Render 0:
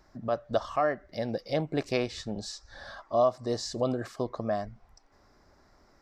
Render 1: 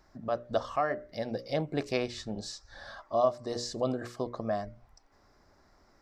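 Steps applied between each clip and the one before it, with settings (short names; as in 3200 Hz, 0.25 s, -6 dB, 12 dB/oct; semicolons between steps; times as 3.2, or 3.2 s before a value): notches 60/120/180/240/300/360/420/480/540/600 Hz; gain -1.5 dB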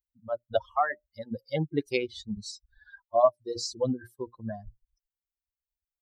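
per-bin expansion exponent 3; gain +8 dB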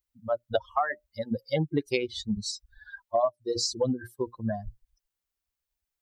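compressor 4:1, threshold -30 dBFS, peak gain reduction 13 dB; gain +6.5 dB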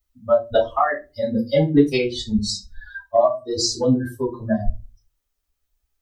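reverb, pre-delay 3 ms, DRR -5 dB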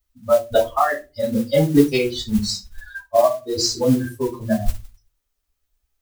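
modulation noise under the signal 22 dB; gain +1 dB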